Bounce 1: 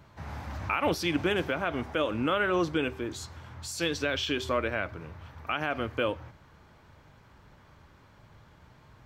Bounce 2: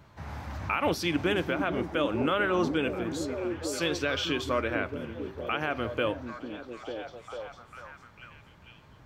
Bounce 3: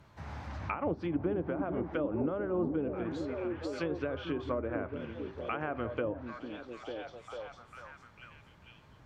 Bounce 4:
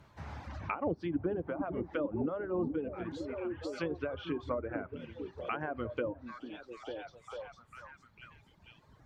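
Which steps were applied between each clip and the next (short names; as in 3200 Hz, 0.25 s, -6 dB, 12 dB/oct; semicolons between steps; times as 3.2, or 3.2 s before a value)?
delay with a stepping band-pass 0.447 s, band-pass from 230 Hz, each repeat 0.7 oct, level -2.5 dB
treble ducked by the level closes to 630 Hz, closed at -23.5 dBFS; gain -3.5 dB
reverb removal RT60 1.6 s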